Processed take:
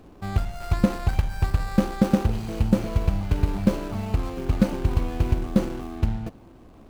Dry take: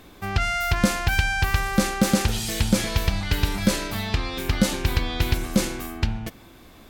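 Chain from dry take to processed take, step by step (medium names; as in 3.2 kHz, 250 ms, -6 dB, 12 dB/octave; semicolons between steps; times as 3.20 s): median filter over 25 samples; trim +1 dB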